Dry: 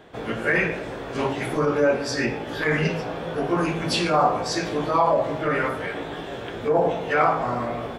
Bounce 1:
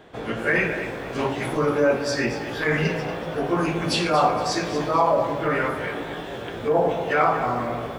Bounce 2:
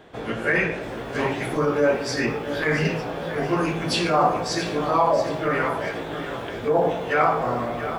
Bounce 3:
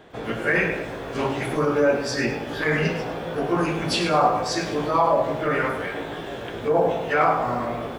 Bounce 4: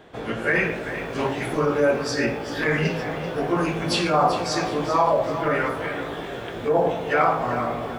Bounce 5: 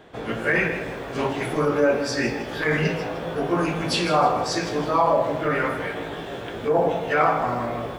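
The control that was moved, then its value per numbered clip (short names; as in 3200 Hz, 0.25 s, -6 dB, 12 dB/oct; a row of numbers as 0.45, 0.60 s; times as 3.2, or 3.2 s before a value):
lo-fi delay, time: 0.234, 0.679, 0.103, 0.388, 0.159 s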